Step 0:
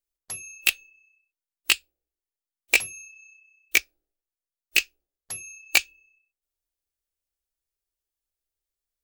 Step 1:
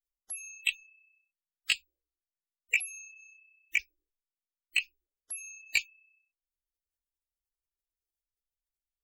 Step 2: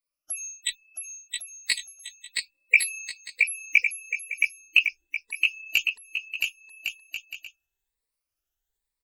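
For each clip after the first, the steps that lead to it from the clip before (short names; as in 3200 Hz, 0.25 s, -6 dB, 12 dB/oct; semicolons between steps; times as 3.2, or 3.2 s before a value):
spectral gate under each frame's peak -15 dB strong; soft clip -13.5 dBFS, distortion -14 dB; gain -3.5 dB
moving spectral ripple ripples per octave 0.95, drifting +1.1 Hz, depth 23 dB; on a send: bouncing-ball echo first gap 0.67 s, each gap 0.65×, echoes 5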